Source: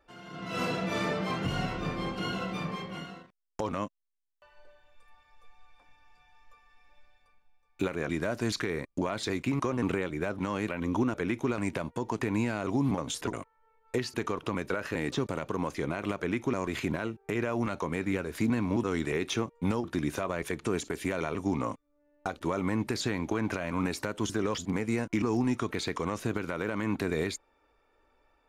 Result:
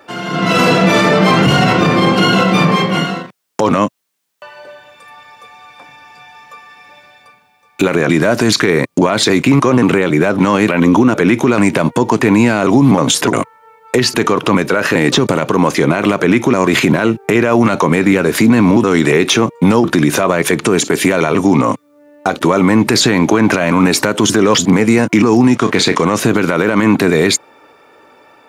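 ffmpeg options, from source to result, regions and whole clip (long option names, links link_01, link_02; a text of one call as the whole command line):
ffmpeg -i in.wav -filter_complex "[0:a]asettb=1/sr,asplit=3[link_01][link_02][link_03];[link_01]atrim=end=25.554[link_04];[link_02]atrim=start=25.55:end=26.02,asetpts=PTS-STARTPTS,afade=type=in:duration=0.004:curve=qsin,afade=type=out:start_time=0.466:duration=0.004:curve=qsin,asplit=2[link_05][link_06];[link_06]adelay=32,volume=-10.5dB[link_07];[link_05][link_07]amix=inputs=2:normalize=0,atrim=end_sample=20727,aeval=exprs='sgn(val(0))*max(abs(val(0))-0.00282,0)':channel_layout=same,lowpass=9400[link_08];[link_03]atrim=start=26.016[link_09];[link_04][link_08]acrossfade=duration=0.004:curve1=hsin:curve2=qsin[link_10];[link_10][link_09]acrossfade=duration=0.004:curve1=qsin:curve2=hsin,highpass=frequency=120:width=0.5412,highpass=frequency=120:width=1.3066,alimiter=level_in=26dB:limit=-1dB:release=50:level=0:latency=1,volume=-1dB" out.wav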